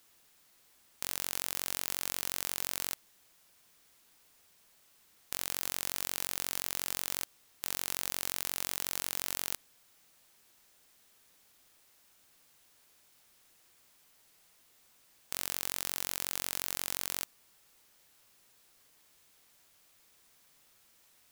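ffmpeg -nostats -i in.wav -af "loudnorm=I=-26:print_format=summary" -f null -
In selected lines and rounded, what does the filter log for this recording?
Input Integrated:    -34.9 LUFS
Input True Peak:      -7.2 dBTP
Input LRA:             6.2 LU
Input Threshold:     -49.0 LUFS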